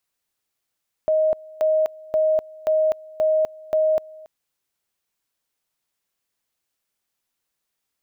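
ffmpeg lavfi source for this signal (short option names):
-f lavfi -i "aevalsrc='pow(10,(-15.5-23*gte(mod(t,0.53),0.25))/20)*sin(2*PI*626*t)':d=3.18:s=44100"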